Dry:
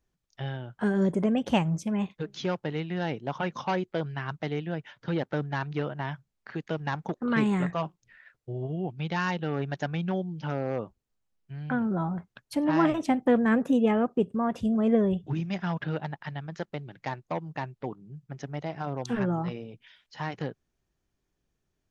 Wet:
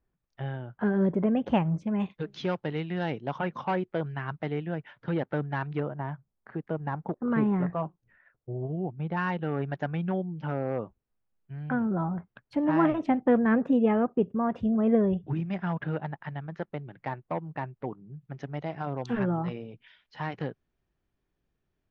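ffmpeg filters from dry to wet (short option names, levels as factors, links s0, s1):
-af "asetnsamples=n=441:p=0,asendcmd='2 lowpass f 3900;3.39 lowpass f 2400;5.8 lowpass f 1200;9.17 lowpass f 2100;18.21 lowpass f 3300',lowpass=2000"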